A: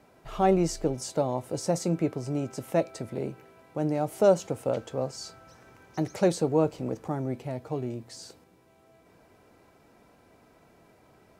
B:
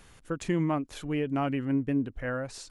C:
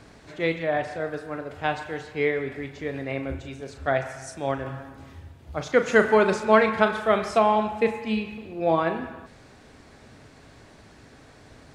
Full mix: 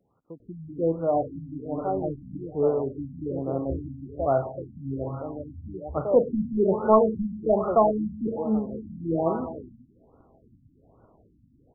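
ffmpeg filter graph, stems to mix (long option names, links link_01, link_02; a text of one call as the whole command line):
ffmpeg -i stem1.wav -i stem2.wav -i stem3.wav -filter_complex "[0:a]equalizer=frequency=610:width_type=o:width=2.2:gain=13,adelay=1450,volume=-17dB,asplit=2[link_01][link_02];[link_02]volume=-3dB[link_03];[1:a]highpass=130,volume=-9dB[link_04];[2:a]agate=range=-10dB:threshold=-47dB:ratio=16:detection=peak,adelay=400,volume=2dB,asplit=2[link_05][link_06];[link_06]volume=-23.5dB[link_07];[link_03][link_07]amix=inputs=2:normalize=0,aecho=0:1:384:1[link_08];[link_01][link_04][link_05][link_08]amix=inputs=4:normalize=0,asoftclip=type=tanh:threshold=-6.5dB,afftfilt=real='re*lt(b*sr/1024,270*pow(1500/270,0.5+0.5*sin(2*PI*1.2*pts/sr)))':imag='im*lt(b*sr/1024,270*pow(1500/270,0.5+0.5*sin(2*PI*1.2*pts/sr)))':win_size=1024:overlap=0.75" out.wav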